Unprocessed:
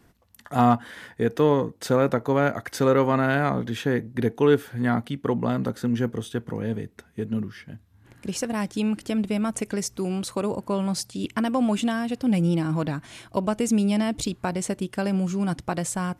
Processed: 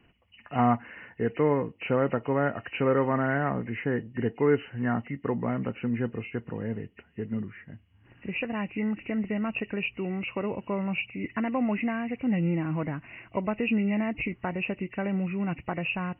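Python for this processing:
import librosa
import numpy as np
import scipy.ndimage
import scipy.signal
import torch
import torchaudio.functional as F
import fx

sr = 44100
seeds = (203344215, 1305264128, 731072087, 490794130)

y = fx.freq_compress(x, sr, knee_hz=1800.0, ratio=4.0)
y = y * librosa.db_to_amplitude(-4.5)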